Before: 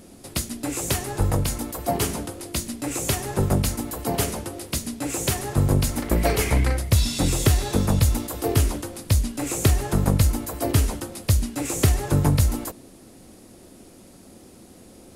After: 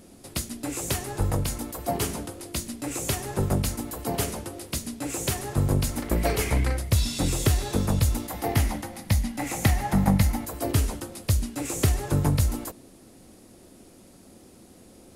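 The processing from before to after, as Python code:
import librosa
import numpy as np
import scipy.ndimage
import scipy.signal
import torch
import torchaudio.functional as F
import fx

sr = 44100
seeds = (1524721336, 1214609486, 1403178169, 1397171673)

y = fx.graphic_eq_31(x, sr, hz=(200, 400, 800, 2000, 8000), db=(9, -9, 10, 10, -5), at=(8.28, 10.45))
y = F.gain(torch.from_numpy(y), -3.5).numpy()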